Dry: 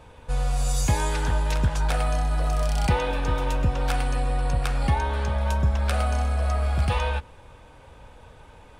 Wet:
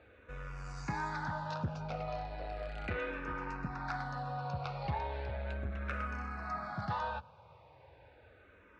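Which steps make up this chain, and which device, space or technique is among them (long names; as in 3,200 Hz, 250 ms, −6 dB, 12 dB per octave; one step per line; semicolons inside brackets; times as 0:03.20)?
0:01.63–0:02.08: graphic EQ with 15 bands 250 Hz +10 dB, 1,000 Hz −10 dB, 4,000 Hz −8 dB
barber-pole phaser into a guitar amplifier (frequency shifter mixed with the dry sound −0.36 Hz; soft clipping −20 dBFS, distortion −17 dB; loudspeaker in its box 110–4,300 Hz, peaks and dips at 250 Hz −5 dB, 460 Hz −4 dB, 1,400 Hz +4 dB, 3,200 Hz −10 dB)
level −5 dB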